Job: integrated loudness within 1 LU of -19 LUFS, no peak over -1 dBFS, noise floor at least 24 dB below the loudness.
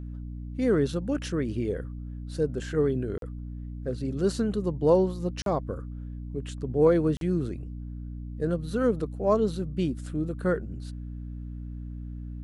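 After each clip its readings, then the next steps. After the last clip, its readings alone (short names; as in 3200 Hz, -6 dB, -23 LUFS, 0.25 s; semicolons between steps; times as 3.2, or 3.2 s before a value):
dropouts 3; longest dropout 42 ms; hum 60 Hz; harmonics up to 300 Hz; hum level -34 dBFS; loudness -28.0 LUFS; peak -9.5 dBFS; loudness target -19.0 LUFS
-> interpolate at 3.18/5.42/7.17, 42 ms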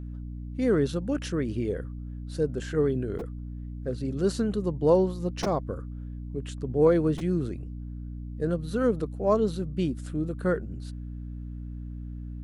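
dropouts 0; hum 60 Hz; harmonics up to 300 Hz; hum level -34 dBFS
-> notches 60/120/180/240/300 Hz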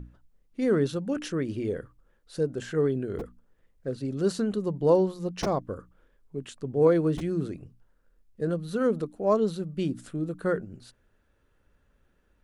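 hum none; loudness -28.0 LUFS; peak -10.5 dBFS; loudness target -19.0 LUFS
-> gain +9 dB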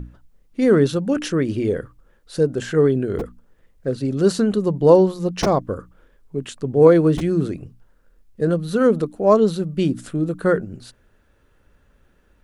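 loudness -19.0 LUFS; peak -1.5 dBFS; noise floor -59 dBFS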